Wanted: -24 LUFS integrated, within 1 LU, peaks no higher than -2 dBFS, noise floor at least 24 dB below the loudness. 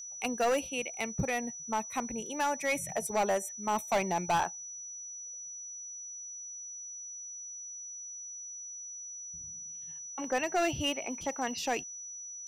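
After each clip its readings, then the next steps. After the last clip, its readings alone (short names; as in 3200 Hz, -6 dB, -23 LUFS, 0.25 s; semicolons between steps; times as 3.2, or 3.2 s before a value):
clipped 1.2%; flat tops at -23.5 dBFS; steady tone 5900 Hz; tone level -41 dBFS; loudness -34.5 LUFS; peak -23.5 dBFS; loudness target -24.0 LUFS
-> clip repair -23.5 dBFS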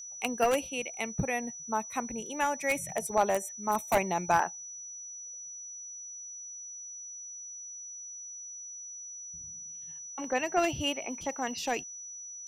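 clipped 0.0%; steady tone 5900 Hz; tone level -41 dBFS
-> notch 5900 Hz, Q 30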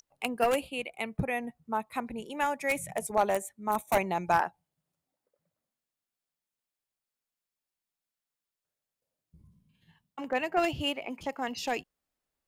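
steady tone none; loudness -31.5 LUFS; peak -14.0 dBFS; loudness target -24.0 LUFS
-> gain +7.5 dB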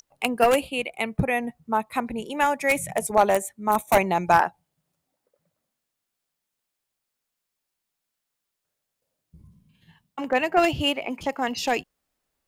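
loudness -24.0 LUFS; peak -6.5 dBFS; noise floor -83 dBFS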